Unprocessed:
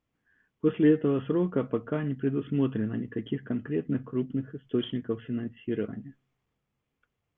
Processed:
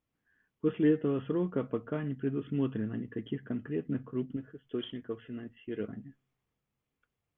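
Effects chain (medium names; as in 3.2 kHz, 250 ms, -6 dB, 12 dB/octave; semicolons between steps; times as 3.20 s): 4.36–5.80 s: peaking EQ 150 Hz -7.5 dB 1.8 oct; trim -4.5 dB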